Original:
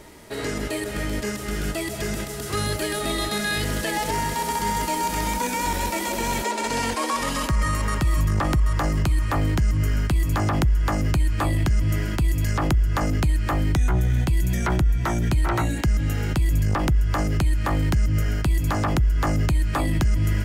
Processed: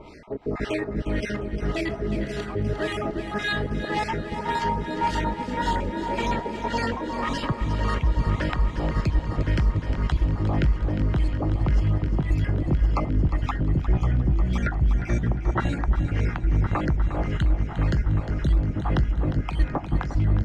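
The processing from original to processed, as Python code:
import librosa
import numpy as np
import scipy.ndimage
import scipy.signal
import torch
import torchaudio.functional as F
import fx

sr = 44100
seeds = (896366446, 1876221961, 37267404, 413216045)

p1 = fx.spec_dropout(x, sr, seeds[0], share_pct=37)
p2 = fx.rider(p1, sr, range_db=4, speed_s=0.5)
p3 = p1 + (p2 * 10.0 ** (0.0 / 20.0))
p4 = fx.filter_lfo_lowpass(p3, sr, shape='sine', hz=1.8, low_hz=330.0, high_hz=4300.0, q=1.0)
p5 = fx.echo_heads(p4, sr, ms=355, heads='first and third', feedback_pct=68, wet_db=-11)
y = p5 * 10.0 ** (-6.5 / 20.0)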